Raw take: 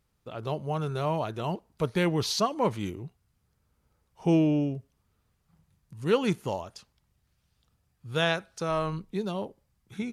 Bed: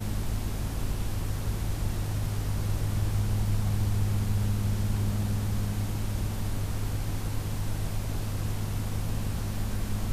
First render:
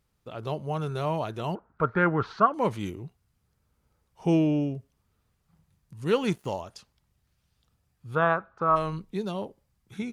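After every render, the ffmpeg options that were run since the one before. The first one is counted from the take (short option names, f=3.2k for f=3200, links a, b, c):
-filter_complex "[0:a]asettb=1/sr,asplit=3[a][b][c];[a]atrim=end=1.554[d];[b]atrim=start=1.55:end=2.54,asetpts=PTS-STARTPTS,afade=t=in:d=0.004:c=qsin,afade=t=out:st=0.986:d=0.004:c=qsin,lowpass=f=1.4k:t=q:w=7.5[e];[c]atrim=start=2.536[f];[d][e]acrossfade=d=0.004:c1=hsin:c2=qsin[g];[g][f]acrossfade=d=0.004:c1=qsin:c2=hsin,asettb=1/sr,asplit=3[h][i][j];[h]atrim=end=6.104[k];[i]atrim=start=6.1:end=6.52,asetpts=PTS-STARTPTS,afade=t=in:d=0.004:c=qsin,afade=t=out:st=0.416:d=0.004:c=qsin,aeval=exprs='sgn(val(0))*max(abs(val(0))-0.00211,0)':c=same[l];[j]atrim=start=6.516[m];[k][l]acrossfade=d=0.004:c1=hsin:c2=qsin[n];[n][m]acrossfade=d=0.004:c1=qsin:c2=hsin,asplit=3[o][p][q];[o]afade=t=out:st=8.14:d=0.02[r];[p]lowpass=f=1.2k:t=q:w=4.8,afade=t=in:st=8.14:d=0.02,afade=t=out:st=8.75:d=0.02[s];[q]afade=t=in:st=8.75:d=0.02[t];[r][s][t]amix=inputs=3:normalize=0"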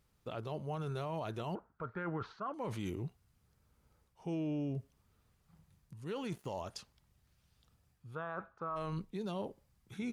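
-af "areverse,acompressor=threshold=-33dB:ratio=16,areverse,alimiter=level_in=7dB:limit=-24dB:level=0:latency=1:release=45,volume=-7dB"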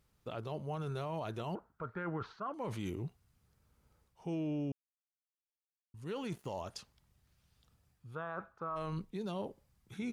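-filter_complex "[0:a]asplit=3[a][b][c];[a]atrim=end=4.72,asetpts=PTS-STARTPTS,afade=t=out:st=4.716:d=0.004:c=hsin[d];[b]atrim=start=4.72:end=5.94,asetpts=PTS-STARTPTS,volume=0[e];[c]atrim=start=5.94,asetpts=PTS-STARTPTS,afade=t=in:d=0.004:c=hsin[f];[d][e][f]concat=n=3:v=0:a=1"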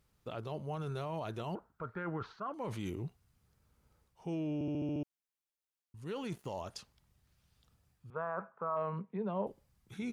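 -filter_complex "[0:a]asettb=1/sr,asplit=3[a][b][c];[a]atrim=end=8.104[d];[b]atrim=start=8.1:end=9.47,asetpts=PTS-STARTPTS,afade=t=in:d=0.004:c=qsin,afade=t=out:st=1.366:d=0.004:c=qsin,highpass=f=150:w=0.5412,highpass=f=150:w=1.3066,equalizer=f=200:t=q:w=4:g=5,equalizer=f=300:t=q:w=4:g=-10,equalizer=f=440:t=q:w=4:g=5,equalizer=f=620:t=q:w=4:g=6,equalizer=f=1k:t=q:w=4:g=7,lowpass=f=2.3k:w=0.5412,lowpass=f=2.3k:w=1.3066[e];[c]atrim=start=9.466[f];[d][e]acrossfade=d=0.004:c1=hsin:c2=qsin[g];[g][f]acrossfade=d=0.004:c1=qsin:c2=hsin,asplit=8[h][i][j][k][l][m][n][o];[h]atrim=end=4.612[p];[i]atrim=start=4.538:end=4.612[q];[j]atrim=start=4.538:end=4.612[r];[k]atrim=start=4.538:end=4.612[s];[l]atrim=start=4.538:end=4.612[t];[m]atrim=start=4.538:end=4.612[u];[n]atrim=start=4.538:end=4.612[v];[o]atrim=start=5.028[w];[p][q]acrossfade=d=0.004:c1=hsin:c2=hsin[x];[x][r]acrossfade=d=0.004:c1=hsin:c2=hsin[y];[y][s]acrossfade=d=0.004:c1=hsin:c2=hsin[z];[z][t]acrossfade=d=0.004:c1=hsin:c2=hsin[aa];[aa][u]acrossfade=d=0.004:c1=hsin:c2=hsin[ab];[ab][v]acrossfade=d=0.004:c1=hsin:c2=hsin[ac];[ac][w]acrossfade=d=0.004:c1=hsin:c2=hsin"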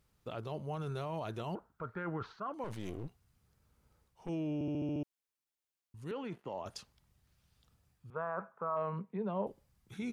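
-filter_complex "[0:a]asettb=1/sr,asplit=3[a][b][c];[a]atrim=end=2.644[d];[b]atrim=start=2.64:end=4.29,asetpts=PTS-STARTPTS,afade=t=in:d=0.004:c=qsin,afade=t=out:st=1.646:d=0.004:c=qsin,aeval=exprs='clip(val(0),-1,0.00251)':c=same[e];[c]atrim=start=4.286[f];[d][e]acrossfade=d=0.004:c1=hsin:c2=qsin[g];[g][f]acrossfade=d=0.004:c1=qsin:c2=hsin,asettb=1/sr,asplit=3[h][i][j];[h]atrim=end=6.114[k];[i]atrim=start=6.11:end=6.66,asetpts=PTS-STARTPTS,afade=t=in:d=0.004:c=qsin,afade=t=out:st=0.546:d=0.004:c=qsin,acrossover=split=170 3100:gain=0.251 1 0.112[l][m][n];[l][m][n]amix=inputs=3:normalize=0[o];[j]atrim=start=6.656[p];[k][o]acrossfade=d=0.004:c1=hsin:c2=qsin[q];[q][p]acrossfade=d=0.004:c1=qsin:c2=hsin"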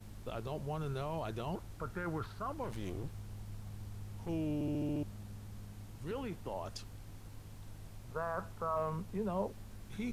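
-filter_complex "[1:a]volume=-19.5dB[a];[0:a][a]amix=inputs=2:normalize=0"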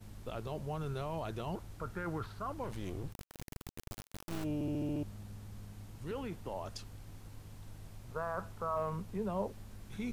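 -filter_complex "[0:a]asplit=3[a][b][c];[a]afade=t=out:st=3.12:d=0.02[d];[b]acrusher=bits=4:dc=4:mix=0:aa=0.000001,afade=t=in:st=3.12:d=0.02,afade=t=out:st=4.43:d=0.02[e];[c]afade=t=in:st=4.43:d=0.02[f];[d][e][f]amix=inputs=3:normalize=0"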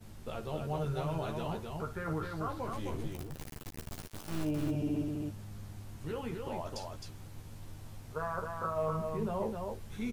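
-filter_complex "[0:a]asplit=2[a][b];[b]adelay=13,volume=-4dB[c];[a][c]amix=inputs=2:normalize=0,aecho=1:1:55.39|262.4:0.251|0.631"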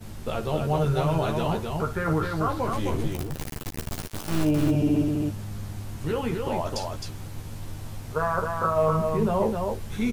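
-af "volume=11dB"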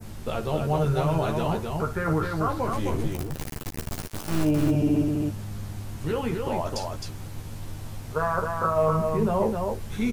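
-af "adynamicequalizer=threshold=0.00355:dfrequency=3400:dqfactor=2:tfrequency=3400:tqfactor=2:attack=5:release=100:ratio=0.375:range=1.5:mode=cutabove:tftype=bell"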